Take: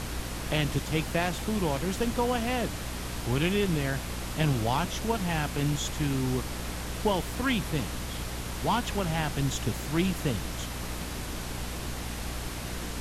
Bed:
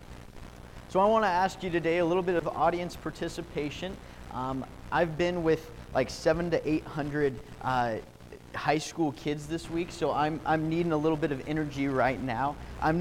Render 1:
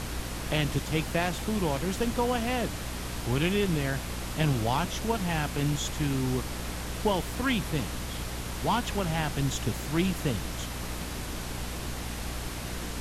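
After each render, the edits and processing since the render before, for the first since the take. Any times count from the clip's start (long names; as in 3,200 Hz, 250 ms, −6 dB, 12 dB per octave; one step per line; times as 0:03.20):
no processing that can be heard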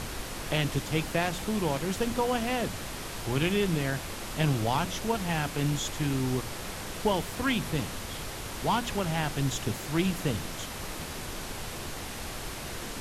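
hum removal 60 Hz, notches 5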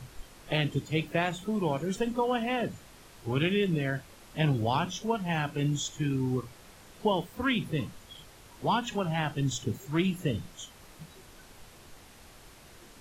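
noise reduction from a noise print 15 dB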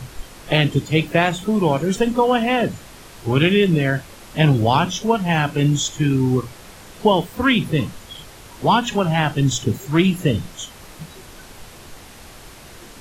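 level +11.5 dB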